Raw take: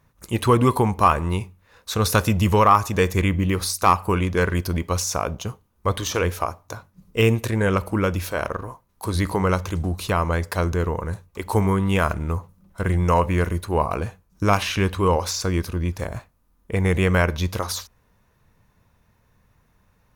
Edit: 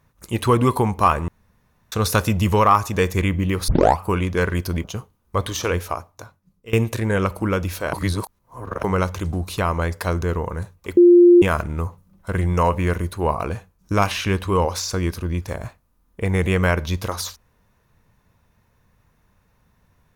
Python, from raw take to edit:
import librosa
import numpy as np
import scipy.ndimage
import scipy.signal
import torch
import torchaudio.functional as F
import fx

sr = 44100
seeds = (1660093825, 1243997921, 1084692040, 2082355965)

y = fx.edit(x, sr, fx.room_tone_fill(start_s=1.28, length_s=0.64),
    fx.tape_start(start_s=3.68, length_s=0.31),
    fx.cut(start_s=4.84, length_s=0.51),
    fx.fade_out_to(start_s=6.25, length_s=0.99, floor_db=-20.5),
    fx.reverse_span(start_s=8.44, length_s=0.91),
    fx.bleep(start_s=11.48, length_s=0.45, hz=350.0, db=-6.5), tone=tone)